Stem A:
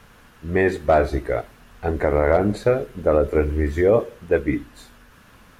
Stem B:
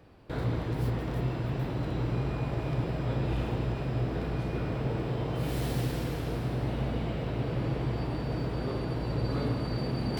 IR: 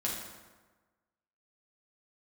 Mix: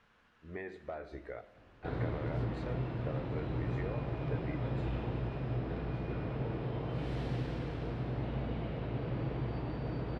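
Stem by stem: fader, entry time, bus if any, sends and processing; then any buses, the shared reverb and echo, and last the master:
−17.5 dB, 0.00 s, send −15.5 dB, spectral tilt +1.5 dB per octave; downward compressor 12 to 1, threshold −22 dBFS, peak gain reduction 10.5 dB
−5.5 dB, 1.55 s, no send, no processing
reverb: on, RT60 1.3 s, pre-delay 5 ms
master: low-pass filter 3,400 Hz 12 dB per octave

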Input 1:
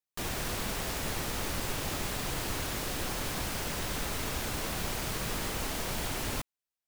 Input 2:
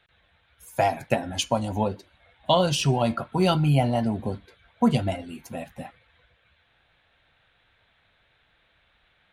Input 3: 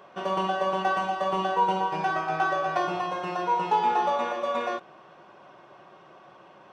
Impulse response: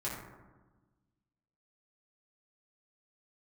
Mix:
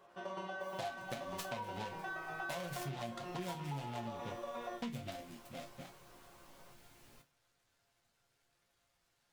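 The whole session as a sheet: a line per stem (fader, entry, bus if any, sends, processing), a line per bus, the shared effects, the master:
−16.5 dB, 0.80 s, no send, no processing
−2.0 dB, 0.00 s, no send, short delay modulated by noise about 2,300 Hz, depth 0.12 ms
−0.5 dB, 0.00 s, no send, no processing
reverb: not used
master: resonators tuned to a chord A#2 minor, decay 0.2 s; downward compressor 6 to 1, threshold −39 dBFS, peak gain reduction 12.5 dB

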